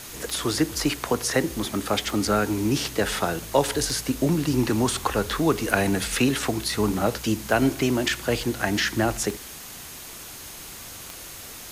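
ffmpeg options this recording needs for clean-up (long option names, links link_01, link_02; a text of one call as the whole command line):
ffmpeg -i in.wav -af "adeclick=threshold=4,bandreject=frequency=6500:width=30,afwtdn=0.011" out.wav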